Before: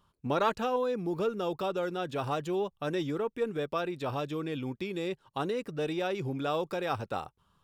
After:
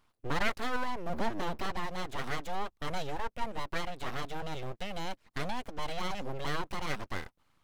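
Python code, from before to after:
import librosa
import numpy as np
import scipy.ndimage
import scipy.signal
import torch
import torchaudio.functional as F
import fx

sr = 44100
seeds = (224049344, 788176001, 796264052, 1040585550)

y = fx.octave_divider(x, sr, octaves=1, level_db=1.0, at=(1.09, 1.69))
y = np.abs(y)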